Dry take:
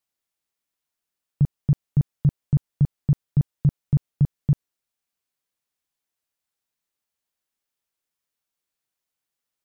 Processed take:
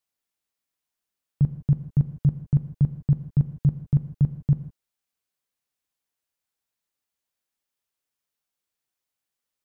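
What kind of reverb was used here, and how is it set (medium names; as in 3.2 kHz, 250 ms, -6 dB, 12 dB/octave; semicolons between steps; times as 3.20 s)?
gated-style reverb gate 180 ms flat, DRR 10 dB; trim -1.5 dB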